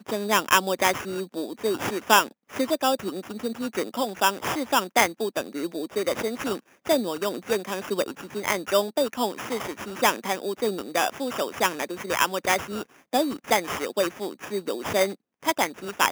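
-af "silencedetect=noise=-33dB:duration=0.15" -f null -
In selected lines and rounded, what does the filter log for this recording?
silence_start: 2.28
silence_end: 2.54 | silence_duration: 0.26
silence_start: 6.59
silence_end: 6.86 | silence_duration: 0.27
silence_start: 12.83
silence_end: 13.13 | silence_duration: 0.30
silence_start: 15.14
silence_end: 15.43 | silence_duration: 0.29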